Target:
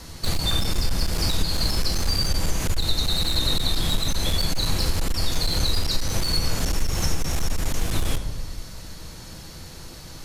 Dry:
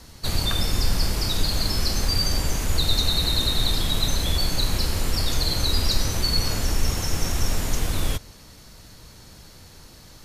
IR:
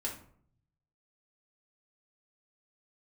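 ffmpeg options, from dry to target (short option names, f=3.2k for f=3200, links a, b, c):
-filter_complex "[0:a]asplit=2[a][b];[1:a]atrim=start_sample=2205,asetrate=24696,aresample=44100[c];[b][c]afir=irnorm=-1:irlink=0,volume=-9.5dB[d];[a][d]amix=inputs=2:normalize=0,acompressor=threshold=-20dB:ratio=5,aeval=exprs='clip(val(0),-1,0.0891)':c=same,volume=3dB"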